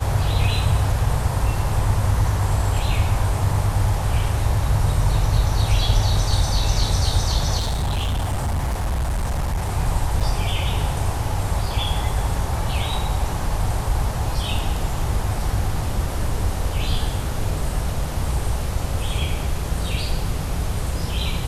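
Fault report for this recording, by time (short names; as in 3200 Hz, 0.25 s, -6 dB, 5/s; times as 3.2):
7.58–9.71 clipped -19 dBFS
10.2–10.21 gap 6.1 ms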